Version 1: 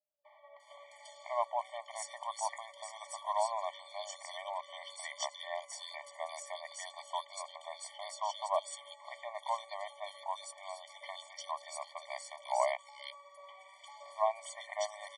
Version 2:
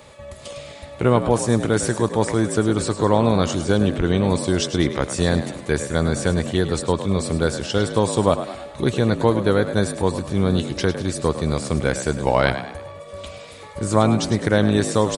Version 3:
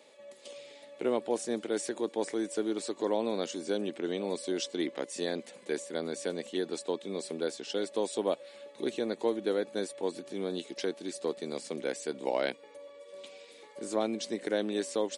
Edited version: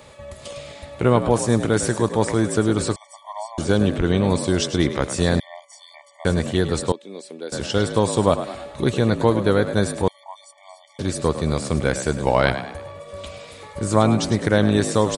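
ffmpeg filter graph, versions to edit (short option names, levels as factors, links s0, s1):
-filter_complex "[0:a]asplit=3[s0][s1][s2];[1:a]asplit=5[s3][s4][s5][s6][s7];[s3]atrim=end=2.962[s8];[s0]atrim=start=2.958:end=3.582[s9];[s4]atrim=start=3.578:end=5.402[s10];[s1]atrim=start=5.398:end=6.252[s11];[s5]atrim=start=6.248:end=6.922[s12];[2:a]atrim=start=6.918:end=7.522[s13];[s6]atrim=start=7.518:end=10.082[s14];[s2]atrim=start=10.078:end=10.992[s15];[s7]atrim=start=10.988[s16];[s8][s9]acrossfade=d=0.004:c1=hsin:c2=hsin[s17];[s17][s10]acrossfade=d=0.004:c1=hsin:c2=hsin[s18];[s18][s11]acrossfade=d=0.004:c1=hsin:c2=hsin[s19];[s19][s12]acrossfade=d=0.004:c1=hsin:c2=hsin[s20];[s20][s13]acrossfade=d=0.004:c1=hsin:c2=hsin[s21];[s21][s14]acrossfade=d=0.004:c1=hsin:c2=hsin[s22];[s22][s15]acrossfade=d=0.004:c1=hsin:c2=hsin[s23];[s23][s16]acrossfade=d=0.004:c1=hsin:c2=hsin"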